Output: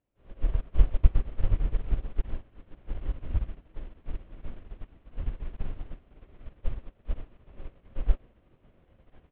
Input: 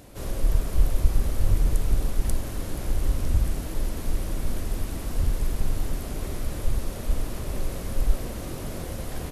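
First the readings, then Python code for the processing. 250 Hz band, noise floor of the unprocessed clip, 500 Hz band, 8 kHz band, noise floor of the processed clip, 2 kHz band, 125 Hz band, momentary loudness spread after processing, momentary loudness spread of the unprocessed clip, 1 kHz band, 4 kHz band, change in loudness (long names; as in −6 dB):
−11.5 dB, −35 dBFS, −11.5 dB, below −40 dB, −65 dBFS, −12.0 dB, −6.0 dB, 21 LU, 8 LU, −11.5 dB, −17.0 dB, −4.5 dB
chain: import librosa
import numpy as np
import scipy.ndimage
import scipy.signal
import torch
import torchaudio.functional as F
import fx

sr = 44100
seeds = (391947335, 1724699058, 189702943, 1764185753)

y = scipy.signal.sosfilt(scipy.signal.butter(8, 3300.0, 'lowpass', fs=sr, output='sos'), x)
y = fx.upward_expand(y, sr, threshold_db=-37.0, expansion=2.5)
y = F.gain(torch.from_numpy(y), 2.5).numpy()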